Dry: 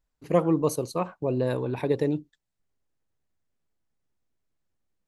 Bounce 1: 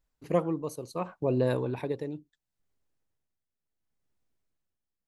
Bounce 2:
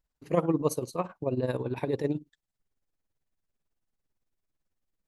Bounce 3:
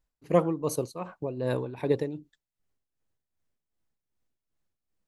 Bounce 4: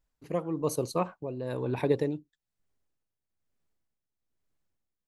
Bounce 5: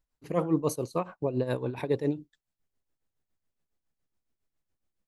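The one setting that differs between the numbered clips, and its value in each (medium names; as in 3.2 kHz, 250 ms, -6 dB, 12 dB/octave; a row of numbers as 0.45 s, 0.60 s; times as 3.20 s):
tremolo, rate: 0.71 Hz, 18 Hz, 2.6 Hz, 1.1 Hz, 7.2 Hz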